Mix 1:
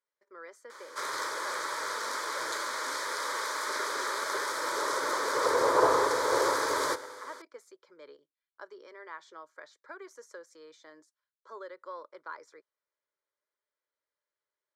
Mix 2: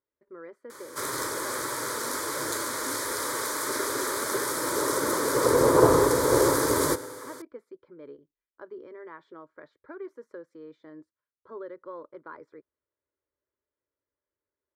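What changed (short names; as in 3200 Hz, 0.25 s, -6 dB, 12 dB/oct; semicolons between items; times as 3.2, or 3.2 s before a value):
speech: add air absorption 440 m; master: remove three-band isolator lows -20 dB, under 510 Hz, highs -16 dB, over 6300 Hz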